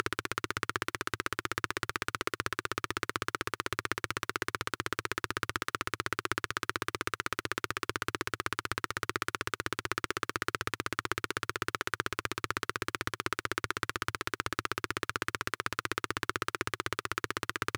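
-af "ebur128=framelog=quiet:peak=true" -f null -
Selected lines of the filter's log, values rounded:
Integrated loudness:
  I:         -34.9 LUFS
  Threshold: -44.9 LUFS
Loudness range:
  LRA:         0.3 LU
  Threshold: -54.9 LUFS
  LRA low:   -35.0 LUFS
  LRA high:  -34.7 LUFS
True peak:
  Peak:       -9.1 dBFS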